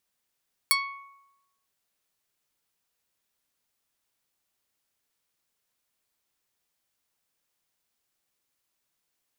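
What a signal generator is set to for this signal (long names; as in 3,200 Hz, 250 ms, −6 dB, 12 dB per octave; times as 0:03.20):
Karplus-Strong string C#6, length 0.95 s, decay 0.96 s, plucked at 0.31, medium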